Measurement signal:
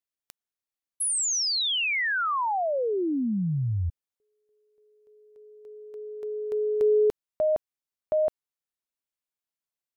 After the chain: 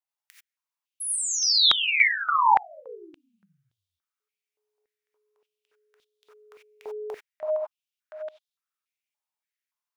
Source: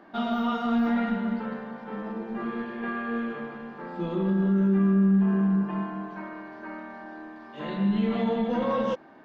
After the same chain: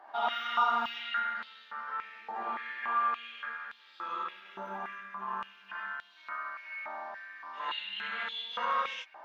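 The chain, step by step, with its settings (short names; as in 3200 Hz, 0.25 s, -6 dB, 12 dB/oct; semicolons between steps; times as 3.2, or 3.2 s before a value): non-linear reverb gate 0.11 s rising, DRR -3 dB; stepped high-pass 3.5 Hz 830–3500 Hz; gain -6 dB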